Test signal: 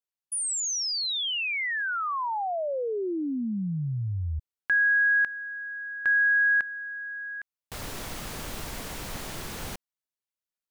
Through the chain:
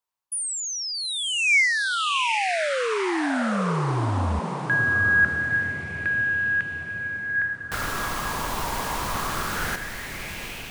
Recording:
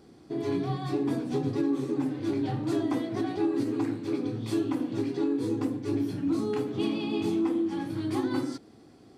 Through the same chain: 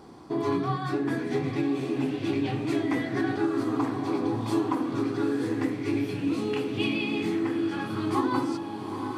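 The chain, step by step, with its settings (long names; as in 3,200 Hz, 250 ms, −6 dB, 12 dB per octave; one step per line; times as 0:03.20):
speech leveller within 5 dB 0.5 s
feedback delay with all-pass diffusion 848 ms, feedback 57%, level −7 dB
auto-filter bell 0.23 Hz 970–2,700 Hz +13 dB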